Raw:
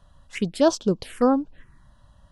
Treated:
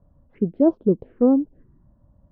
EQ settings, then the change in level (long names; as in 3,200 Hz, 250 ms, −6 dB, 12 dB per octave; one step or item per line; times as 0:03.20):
resonant band-pass 380 Hz, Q 1.3
high-frequency loss of the air 340 metres
spectral tilt −4 dB per octave
0.0 dB